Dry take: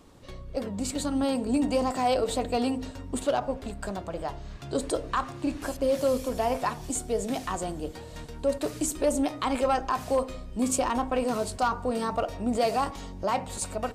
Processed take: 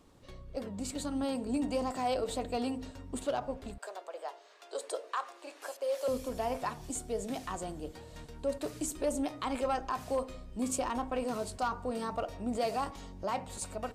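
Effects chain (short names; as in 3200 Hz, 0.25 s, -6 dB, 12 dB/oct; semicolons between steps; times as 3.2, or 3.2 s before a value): 3.78–6.08 steep high-pass 420 Hz 36 dB/oct; gain -7 dB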